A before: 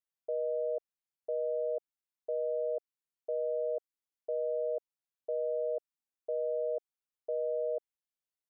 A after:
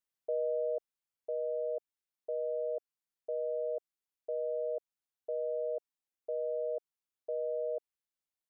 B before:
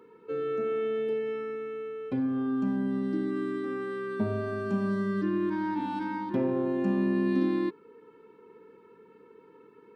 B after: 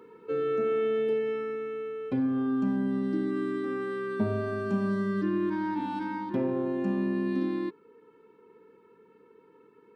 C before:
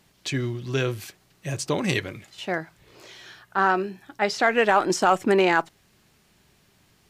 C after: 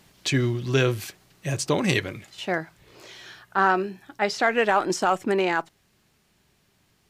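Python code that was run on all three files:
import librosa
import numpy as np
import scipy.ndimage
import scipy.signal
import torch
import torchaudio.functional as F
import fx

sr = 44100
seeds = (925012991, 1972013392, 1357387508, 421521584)

y = fx.rider(x, sr, range_db=5, speed_s=2.0)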